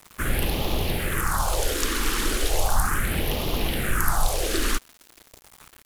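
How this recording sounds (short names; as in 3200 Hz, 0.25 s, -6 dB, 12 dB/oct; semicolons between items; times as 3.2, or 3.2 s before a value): phasing stages 4, 0.36 Hz, lowest notch 110–1500 Hz; a quantiser's noise floor 8-bit, dither none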